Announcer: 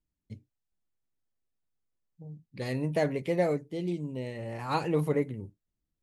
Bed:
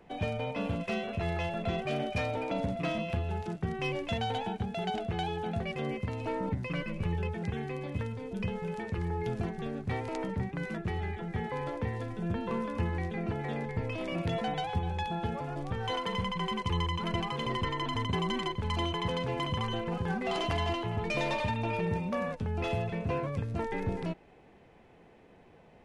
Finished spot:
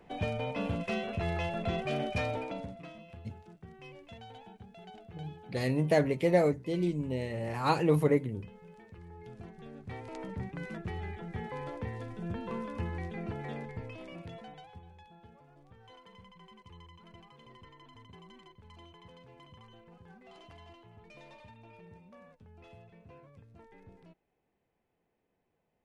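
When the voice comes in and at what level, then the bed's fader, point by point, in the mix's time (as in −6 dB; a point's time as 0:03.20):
2.95 s, +2.0 dB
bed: 0:02.32 −0.5 dB
0:02.93 −17 dB
0:09.06 −17 dB
0:10.47 −4.5 dB
0:13.51 −4.5 dB
0:15.05 −22.5 dB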